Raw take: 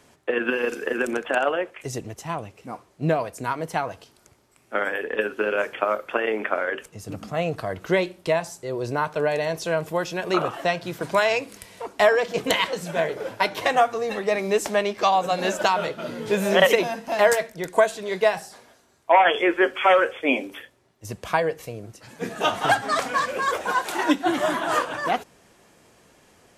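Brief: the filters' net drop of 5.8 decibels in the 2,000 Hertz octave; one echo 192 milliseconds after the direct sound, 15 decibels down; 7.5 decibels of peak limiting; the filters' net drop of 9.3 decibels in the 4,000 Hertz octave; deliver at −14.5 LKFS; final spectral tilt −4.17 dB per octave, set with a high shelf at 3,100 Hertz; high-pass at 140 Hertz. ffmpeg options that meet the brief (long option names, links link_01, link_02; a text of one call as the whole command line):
ffmpeg -i in.wav -af "highpass=140,equalizer=frequency=2000:width_type=o:gain=-4,highshelf=frequency=3100:gain=-7,equalizer=frequency=4000:width_type=o:gain=-6,alimiter=limit=-14dB:level=0:latency=1,aecho=1:1:192:0.178,volume=12.5dB" out.wav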